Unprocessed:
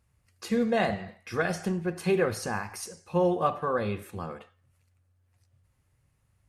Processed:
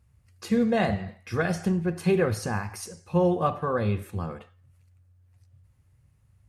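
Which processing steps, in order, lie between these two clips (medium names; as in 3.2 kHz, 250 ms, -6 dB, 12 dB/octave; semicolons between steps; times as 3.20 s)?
peaking EQ 86 Hz +9.5 dB 2.4 oct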